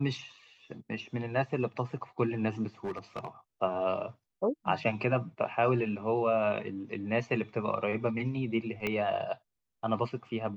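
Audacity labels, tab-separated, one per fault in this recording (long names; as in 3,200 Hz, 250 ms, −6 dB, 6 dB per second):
2.840000	3.280000	clipping −31 dBFS
8.870000	8.870000	click −18 dBFS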